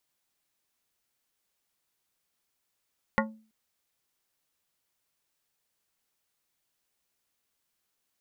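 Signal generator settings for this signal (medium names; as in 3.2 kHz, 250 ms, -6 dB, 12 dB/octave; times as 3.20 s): glass hit plate, length 0.33 s, lowest mode 219 Hz, modes 7, decay 0.41 s, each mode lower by 0 dB, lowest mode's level -24 dB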